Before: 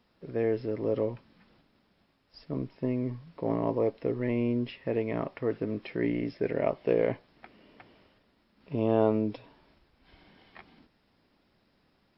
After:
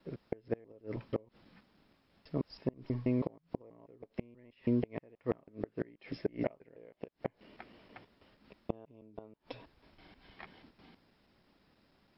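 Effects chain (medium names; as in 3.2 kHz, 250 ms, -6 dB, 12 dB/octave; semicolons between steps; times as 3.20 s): slices played last to first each 161 ms, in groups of 2; inverted gate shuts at -19 dBFS, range -29 dB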